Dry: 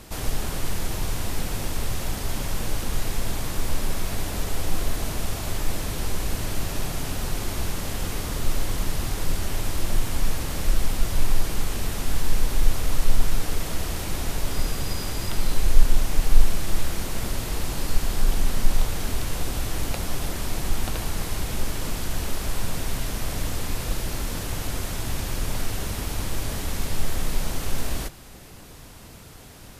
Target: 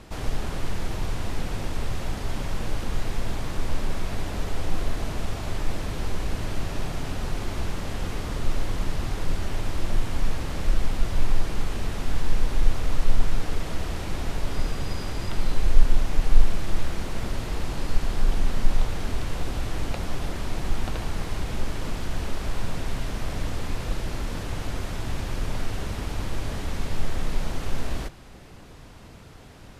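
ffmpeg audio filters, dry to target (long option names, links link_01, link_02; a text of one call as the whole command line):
ffmpeg -i in.wav -af "aemphasis=mode=reproduction:type=50fm,volume=-1dB" out.wav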